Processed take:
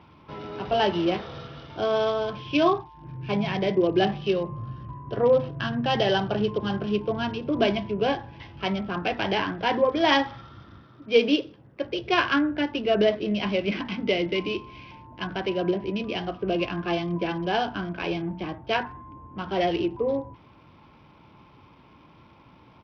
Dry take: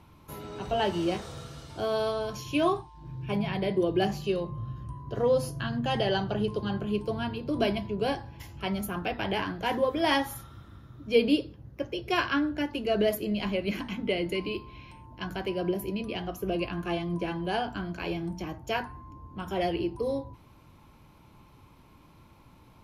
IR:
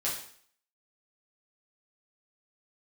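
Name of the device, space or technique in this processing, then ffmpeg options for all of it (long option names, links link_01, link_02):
Bluetooth headset: -filter_complex "[0:a]asettb=1/sr,asplit=3[link_01][link_02][link_03];[link_01]atrim=end=10.834[link_04];[link_02]atrim=start=10.83:end=11.85,asetpts=PTS-STARTPTS,afade=type=in:duration=0.004:curve=qsin,afade=type=out:start_time=1.016:duration=0.004:curve=qsin,highpass=frequency=260:poles=1[link_05];[link_03]atrim=start=11.846[link_06];[link_04][link_05]acrossfade=duration=0.004:curve1=hsin:curve2=qsin[link_07];[link_07][link_06]acrossfade=duration=0.004:curve1=qsin:curve2=hsin,highpass=frequency=150:poles=1,aresample=8000,aresample=44100,volume=5dB" -ar 44100 -c:a sbc -b:a 64k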